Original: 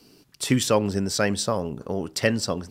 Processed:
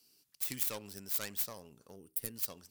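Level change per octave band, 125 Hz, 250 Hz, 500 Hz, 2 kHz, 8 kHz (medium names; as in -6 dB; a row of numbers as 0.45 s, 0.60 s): -25.5 dB, -25.5 dB, -25.0 dB, -19.5 dB, -11.0 dB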